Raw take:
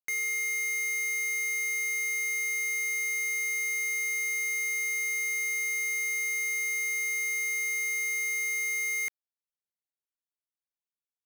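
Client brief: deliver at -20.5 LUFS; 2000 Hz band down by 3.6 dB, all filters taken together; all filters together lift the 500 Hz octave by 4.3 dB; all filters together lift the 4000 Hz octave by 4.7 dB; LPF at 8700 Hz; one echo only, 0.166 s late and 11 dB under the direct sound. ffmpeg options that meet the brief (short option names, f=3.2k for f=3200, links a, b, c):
-af "lowpass=8.7k,equalizer=f=500:t=o:g=5.5,equalizer=f=2k:t=o:g=-5.5,equalizer=f=4k:t=o:g=7,aecho=1:1:166:0.282,volume=9dB"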